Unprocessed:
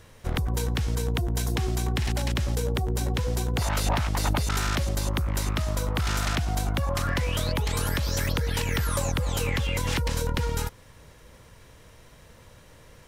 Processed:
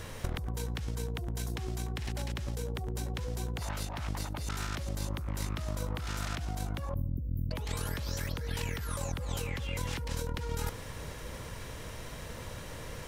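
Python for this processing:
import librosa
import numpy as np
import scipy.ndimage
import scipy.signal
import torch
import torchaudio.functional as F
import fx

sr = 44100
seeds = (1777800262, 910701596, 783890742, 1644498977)

p1 = fx.cheby2_bandstop(x, sr, low_hz=870.0, high_hz=7400.0, order=4, stop_db=60, at=(6.94, 7.51))
p2 = fx.over_compress(p1, sr, threshold_db=-35.0, ratio=-1.0)
y = p2 + fx.echo_banded(p2, sr, ms=71, feedback_pct=71, hz=380.0, wet_db=-15.5, dry=0)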